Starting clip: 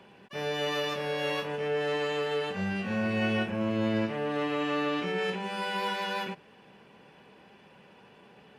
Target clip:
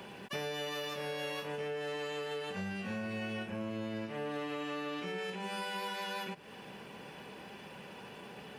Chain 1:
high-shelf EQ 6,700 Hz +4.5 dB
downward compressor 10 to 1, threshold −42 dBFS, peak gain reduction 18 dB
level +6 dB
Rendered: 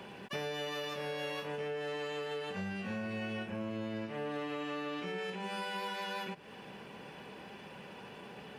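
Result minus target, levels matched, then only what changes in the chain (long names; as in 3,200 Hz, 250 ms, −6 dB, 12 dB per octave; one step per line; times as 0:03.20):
8,000 Hz band −3.0 dB
change: high-shelf EQ 6,700 Hz +11 dB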